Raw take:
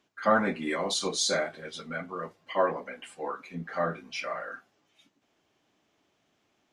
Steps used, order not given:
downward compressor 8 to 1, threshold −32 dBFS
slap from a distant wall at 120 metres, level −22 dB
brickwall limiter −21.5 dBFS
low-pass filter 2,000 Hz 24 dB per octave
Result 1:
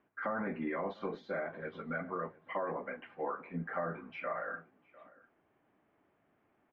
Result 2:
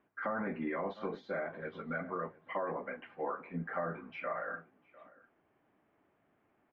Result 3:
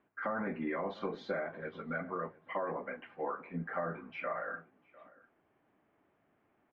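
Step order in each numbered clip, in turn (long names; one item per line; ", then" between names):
brickwall limiter, then slap from a distant wall, then downward compressor, then low-pass filter
slap from a distant wall, then brickwall limiter, then downward compressor, then low-pass filter
low-pass filter, then brickwall limiter, then slap from a distant wall, then downward compressor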